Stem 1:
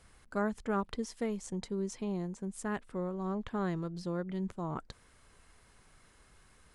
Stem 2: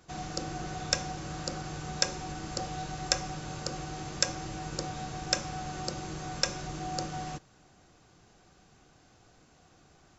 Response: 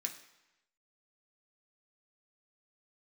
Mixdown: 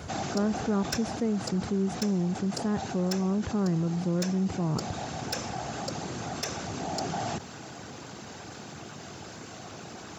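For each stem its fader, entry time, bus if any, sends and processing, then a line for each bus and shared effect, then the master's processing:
-2.0 dB, 0.00 s, no send, tilt -4 dB/oct
0.0 dB, 0.00 s, no send, whisperiser; soft clip -21 dBFS, distortion -12 dB; auto duck -7 dB, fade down 1.35 s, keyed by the first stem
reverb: off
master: HPF 88 Hz 24 dB/oct; fast leveller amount 50%

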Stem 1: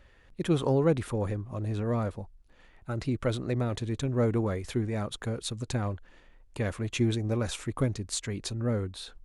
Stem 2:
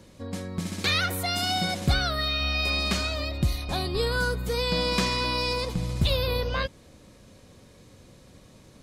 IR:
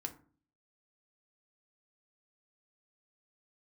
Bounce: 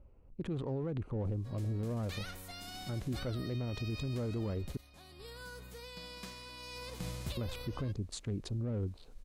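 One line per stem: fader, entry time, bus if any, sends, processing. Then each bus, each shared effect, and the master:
-5.0 dB, 0.00 s, muted 4.77–7.37, no send, Wiener smoothing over 25 samples; LPF 3600 Hz 6 dB/oct
4.43 s -10.5 dB -> 4.97 s -23.5 dB -> 6.53 s -23.5 dB -> 7.22 s -11.5 dB, 1.25 s, no send, spectral whitening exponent 0.6; auto duck -10 dB, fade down 0.30 s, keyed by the first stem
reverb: off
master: low shelf 360 Hz +5.5 dB; limiter -29 dBFS, peak gain reduction 13.5 dB

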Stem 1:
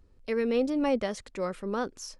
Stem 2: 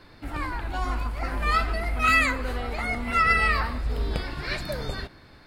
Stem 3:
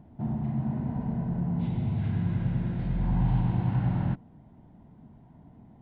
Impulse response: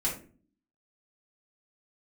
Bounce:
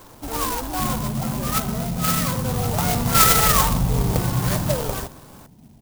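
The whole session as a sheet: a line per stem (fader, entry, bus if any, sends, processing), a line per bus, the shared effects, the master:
-1.0 dB, 0.00 s, no send, soft clip -31 dBFS, distortion -8 dB
-1.0 dB, 0.00 s, send -21.5 dB, ten-band EQ 125 Hz +7 dB, 250 Hz +3 dB, 500 Hz +6 dB, 1000 Hz +12 dB; auto duck -10 dB, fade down 1.55 s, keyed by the first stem
+3.0 dB, 0.60 s, no send, dry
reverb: on, RT60 0.40 s, pre-delay 3 ms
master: clock jitter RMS 0.12 ms

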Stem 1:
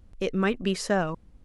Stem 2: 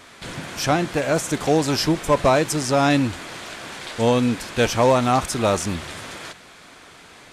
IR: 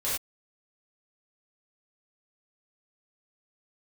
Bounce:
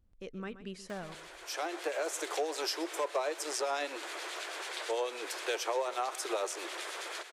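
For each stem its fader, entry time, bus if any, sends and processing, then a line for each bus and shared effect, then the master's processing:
-16.5 dB, 0.00 s, no send, echo send -14 dB, dry
-3.0 dB, 0.90 s, no send, echo send -22 dB, steep high-pass 340 Hz 72 dB/oct; upward compressor, threshold -33 dBFS; harmonic tremolo 9.2 Hz, depth 50%, crossover 1900 Hz; auto duck -11 dB, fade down 1.45 s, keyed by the first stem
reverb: off
echo: echo 0.127 s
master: compressor 3:1, threshold -33 dBFS, peak gain reduction 12.5 dB

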